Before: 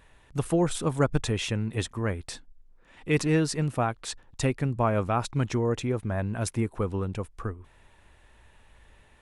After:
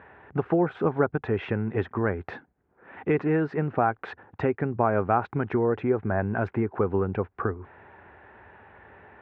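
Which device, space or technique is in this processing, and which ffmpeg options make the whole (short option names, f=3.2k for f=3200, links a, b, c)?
bass amplifier: -af "acompressor=threshold=-33dB:ratio=3,highpass=f=88:w=0.5412,highpass=f=88:w=1.3066,equalizer=f=130:t=q:w=4:g=-6,equalizer=f=400:t=q:w=4:g=7,equalizer=f=780:t=q:w=4:g=7,equalizer=f=1.5k:t=q:w=4:g=6,lowpass=f=2.1k:w=0.5412,lowpass=f=2.1k:w=1.3066,volume=8.5dB"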